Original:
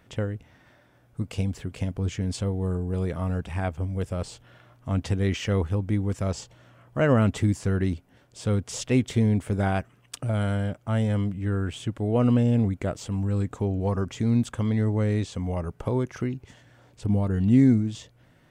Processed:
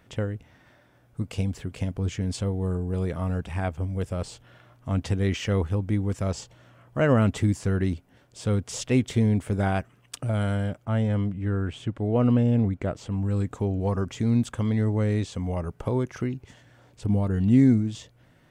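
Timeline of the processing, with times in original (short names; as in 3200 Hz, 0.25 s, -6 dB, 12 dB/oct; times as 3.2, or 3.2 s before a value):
10.85–13.25 LPF 3100 Hz 6 dB/oct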